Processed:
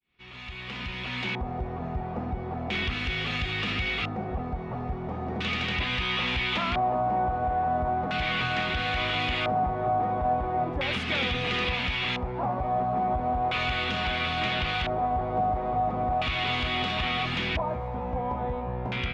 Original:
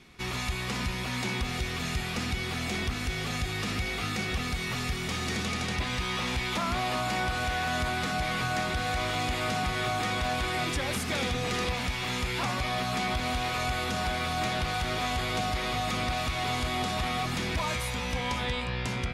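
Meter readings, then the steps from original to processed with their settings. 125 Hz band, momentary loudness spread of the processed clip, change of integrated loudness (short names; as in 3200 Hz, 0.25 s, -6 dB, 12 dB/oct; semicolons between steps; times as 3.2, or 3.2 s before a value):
0.0 dB, 7 LU, +2.0 dB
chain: opening faded in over 1.61 s; LFO low-pass square 0.37 Hz 760–3000 Hz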